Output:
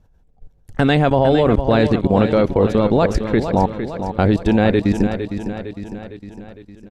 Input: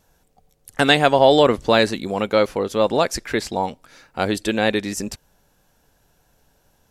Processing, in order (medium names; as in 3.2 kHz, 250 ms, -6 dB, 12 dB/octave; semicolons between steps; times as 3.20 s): RIAA curve playback; level held to a coarse grid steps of 20 dB; feedback delay 457 ms, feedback 55%, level -9 dB; trim +6 dB